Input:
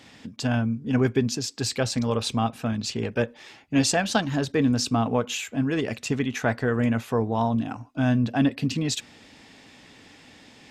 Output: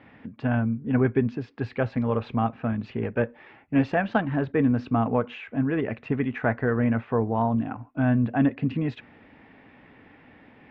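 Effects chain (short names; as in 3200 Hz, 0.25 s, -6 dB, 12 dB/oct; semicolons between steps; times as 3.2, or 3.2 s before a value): LPF 2200 Hz 24 dB/oct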